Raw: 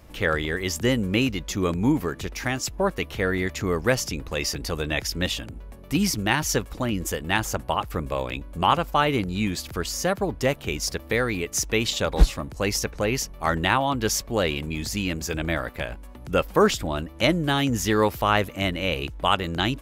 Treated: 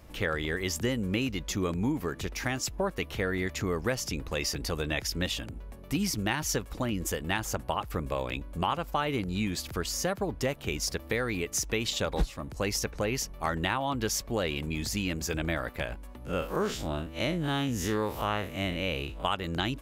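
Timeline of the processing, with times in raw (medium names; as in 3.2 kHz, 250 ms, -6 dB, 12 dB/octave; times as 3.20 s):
16.25–19.25 s: spectral blur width 97 ms
whole clip: compression 3:1, threshold -24 dBFS; trim -2.5 dB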